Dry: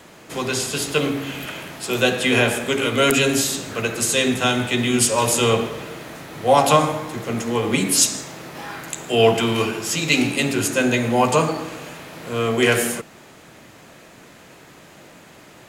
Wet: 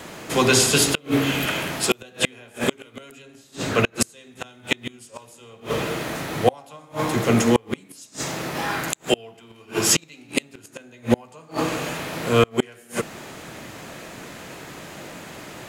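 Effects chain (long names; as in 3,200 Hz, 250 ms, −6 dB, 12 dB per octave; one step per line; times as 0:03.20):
gate with flip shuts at −11 dBFS, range −35 dB
0:03.22–0:03.97: high-shelf EQ 5,900 Hz −7.5 dB
level +7 dB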